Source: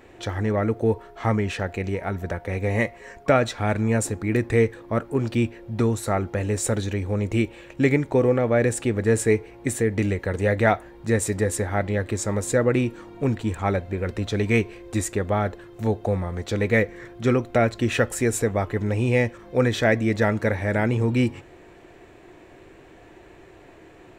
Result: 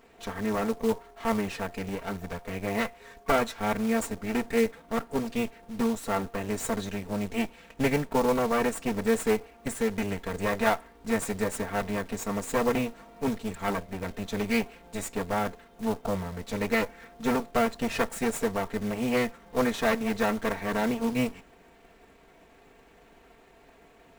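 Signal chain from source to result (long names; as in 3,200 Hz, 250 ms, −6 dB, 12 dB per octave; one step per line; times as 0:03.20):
lower of the sound and its delayed copy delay 4.4 ms
dynamic equaliser 960 Hz, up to +4 dB, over −32 dBFS, Q 1.1
floating-point word with a short mantissa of 2 bits
level −5.5 dB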